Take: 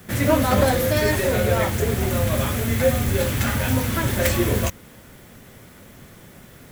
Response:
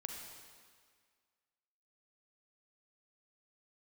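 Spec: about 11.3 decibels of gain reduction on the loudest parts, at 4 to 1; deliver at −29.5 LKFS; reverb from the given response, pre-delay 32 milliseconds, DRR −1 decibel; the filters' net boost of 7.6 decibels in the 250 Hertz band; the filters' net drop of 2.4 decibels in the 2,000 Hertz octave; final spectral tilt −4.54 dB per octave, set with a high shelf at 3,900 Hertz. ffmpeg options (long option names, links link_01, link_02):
-filter_complex "[0:a]equalizer=frequency=250:width_type=o:gain=9,equalizer=frequency=2000:width_type=o:gain=-4.5,highshelf=frequency=3900:gain=6,acompressor=threshold=-24dB:ratio=4,asplit=2[link_01][link_02];[1:a]atrim=start_sample=2205,adelay=32[link_03];[link_02][link_03]afir=irnorm=-1:irlink=0,volume=2.5dB[link_04];[link_01][link_04]amix=inputs=2:normalize=0,volume=-6.5dB"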